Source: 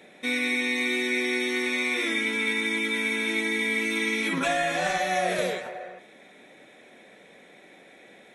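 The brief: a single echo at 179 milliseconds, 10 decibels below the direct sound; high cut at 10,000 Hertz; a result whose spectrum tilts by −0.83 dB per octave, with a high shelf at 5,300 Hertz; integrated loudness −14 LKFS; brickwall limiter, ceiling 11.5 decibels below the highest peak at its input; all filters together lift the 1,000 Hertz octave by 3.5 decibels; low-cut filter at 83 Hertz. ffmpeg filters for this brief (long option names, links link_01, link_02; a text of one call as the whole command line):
ffmpeg -i in.wav -af "highpass=83,lowpass=10000,equalizer=frequency=1000:width_type=o:gain=6,highshelf=frequency=5300:gain=-5,alimiter=limit=-23dB:level=0:latency=1,aecho=1:1:179:0.316,volume=16dB" out.wav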